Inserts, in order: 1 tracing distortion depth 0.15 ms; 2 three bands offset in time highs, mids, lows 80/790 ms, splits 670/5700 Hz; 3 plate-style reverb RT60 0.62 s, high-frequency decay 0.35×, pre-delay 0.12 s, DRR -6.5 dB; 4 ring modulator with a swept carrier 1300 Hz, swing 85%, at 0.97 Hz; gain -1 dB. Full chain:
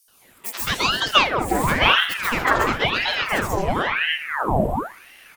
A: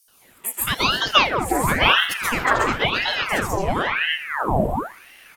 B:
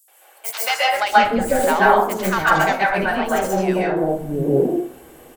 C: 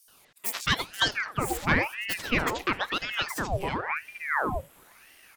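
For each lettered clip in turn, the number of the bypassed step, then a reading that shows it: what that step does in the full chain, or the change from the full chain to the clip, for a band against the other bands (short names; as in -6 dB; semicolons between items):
1, 8 kHz band +3.0 dB; 4, crest factor change -2.5 dB; 3, momentary loudness spread change -2 LU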